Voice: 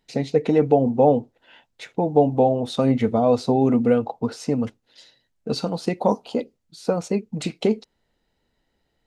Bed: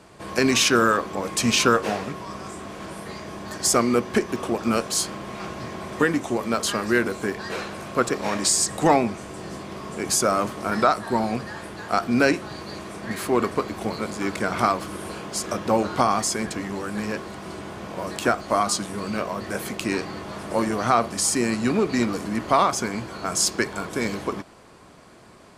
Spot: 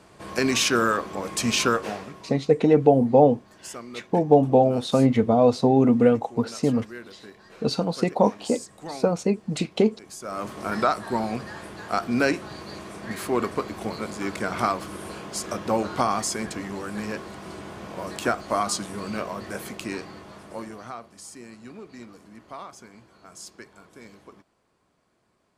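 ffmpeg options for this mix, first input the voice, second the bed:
-filter_complex "[0:a]adelay=2150,volume=1.06[s0];[1:a]volume=4.47,afade=t=out:st=1.63:d=0.82:silence=0.158489,afade=t=in:st=10.21:d=0.4:silence=0.158489,afade=t=out:st=19.18:d=1.83:silence=0.133352[s1];[s0][s1]amix=inputs=2:normalize=0"

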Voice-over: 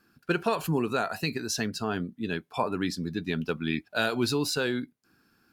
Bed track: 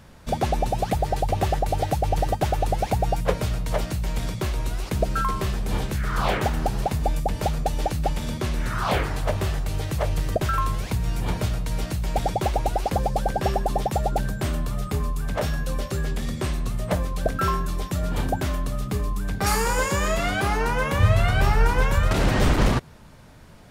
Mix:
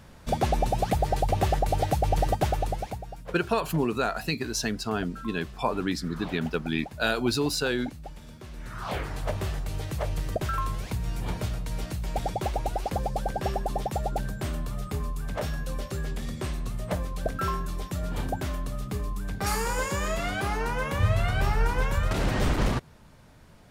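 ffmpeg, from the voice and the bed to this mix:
-filter_complex "[0:a]adelay=3050,volume=1.12[s0];[1:a]volume=3.35,afade=t=out:st=2.4:d=0.64:silence=0.158489,afade=t=in:st=8.47:d=0.82:silence=0.251189[s1];[s0][s1]amix=inputs=2:normalize=0"

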